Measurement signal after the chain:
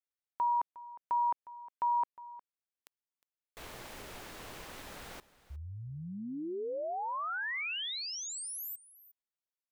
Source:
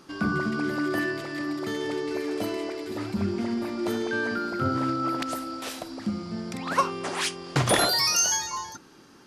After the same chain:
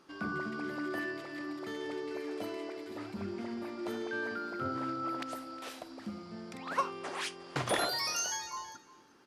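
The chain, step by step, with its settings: tone controls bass -7 dB, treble -5 dB; delay 359 ms -18.5 dB; trim -8 dB

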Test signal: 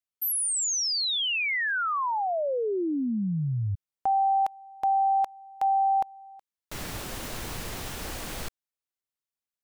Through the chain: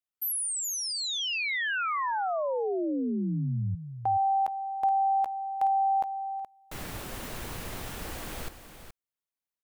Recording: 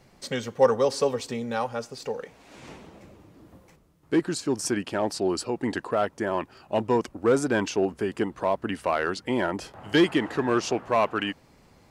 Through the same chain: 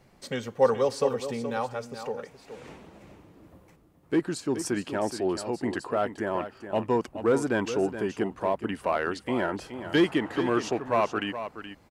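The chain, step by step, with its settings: peaking EQ 5.5 kHz -4 dB 1.5 oct; delay 423 ms -10.5 dB; trim -2 dB

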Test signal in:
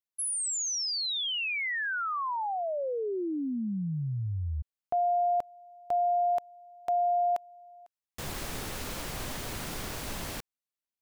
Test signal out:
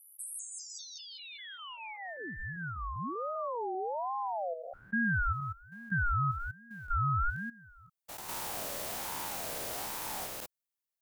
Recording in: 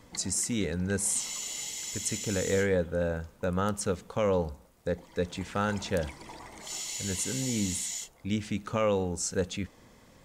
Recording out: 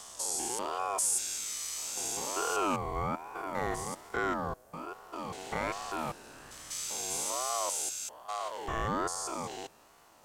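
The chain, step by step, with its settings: spectrogram pixelated in time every 200 ms; treble shelf 7.6 kHz +10 dB; ring modulator with a swept carrier 750 Hz, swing 25%, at 1.2 Hz

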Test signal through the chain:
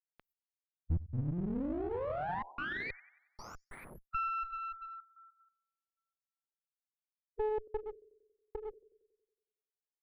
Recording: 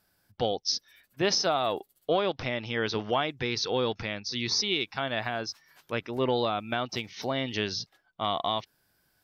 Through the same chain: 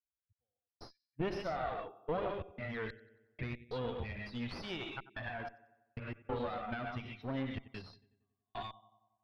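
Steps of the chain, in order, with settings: expander on every frequency bin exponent 2; gated-style reverb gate 160 ms rising, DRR 3.5 dB; compression 2:1, threshold -39 dBFS; peaking EQ 73 Hz +11 dB 0.58 oct; trance gate "xx...x.xxxxxxxx." 93 bpm -60 dB; filtered feedback delay 92 ms, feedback 59%, low-pass 3.2 kHz, level -20 dB; one-sided clip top -47.5 dBFS; distance through air 400 m; trim +5 dB

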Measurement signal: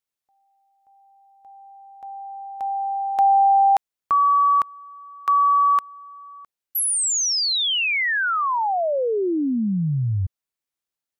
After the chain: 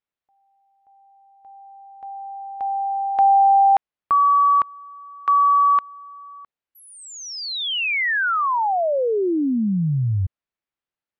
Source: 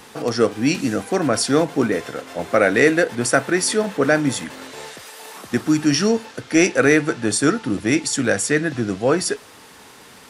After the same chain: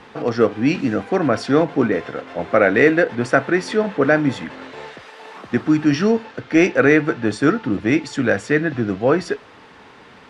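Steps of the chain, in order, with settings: low-pass 2.8 kHz 12 dB/octave; trim +1.5 dB

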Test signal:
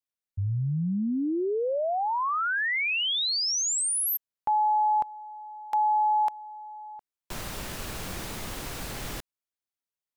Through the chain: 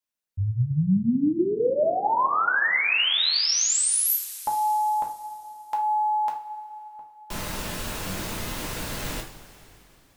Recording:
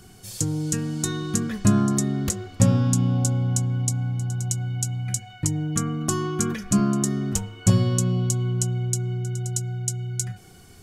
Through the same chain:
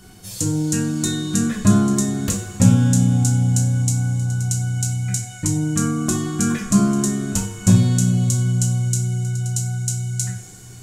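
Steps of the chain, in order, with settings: two-slope reverb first 0.35 s, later 3.3 s, from -18 dB, DRR -1 dB; trim +1 dB

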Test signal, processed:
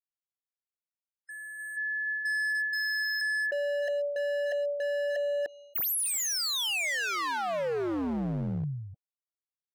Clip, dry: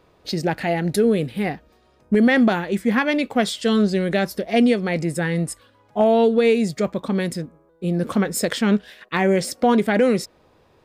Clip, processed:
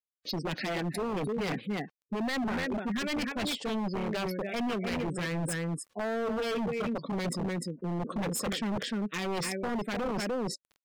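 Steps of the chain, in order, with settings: peaking EQ 840 Hz -6 dB 0.5 oct; expander -52 dBFS; high-pass 150 Hz 24 dB/octave; word length cut 8-bit, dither none; on a send: delay 300 ms -8 dB; on the sum: dynamic bell 2.4 kHz, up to +7 dB, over -41 dBFS, Q 3.5; spectral gate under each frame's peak -20 dB strong; reverse; compression 5:1, threshold -30 dBFS; reverse; wavefolder -29 dBFS; trim +2.5 dB

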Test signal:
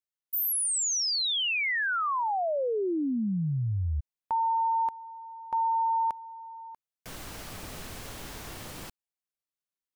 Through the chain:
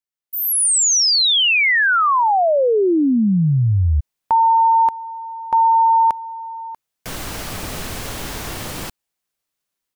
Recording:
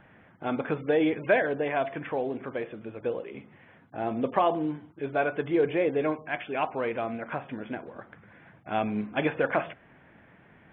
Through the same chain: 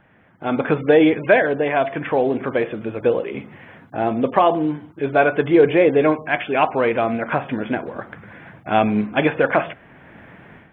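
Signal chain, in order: level rider gain up to 13 dB

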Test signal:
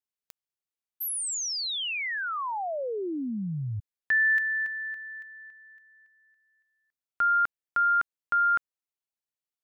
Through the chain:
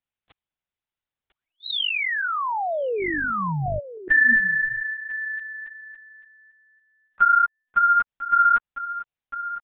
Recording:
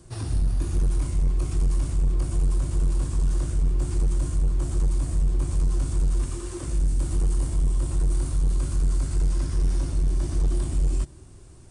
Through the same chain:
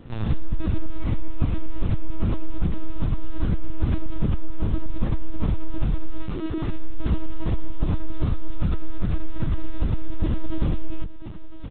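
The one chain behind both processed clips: delay 1007 ms -13 dB; LPC vocoder at 8 kHz pitch kept; trim +6 dB

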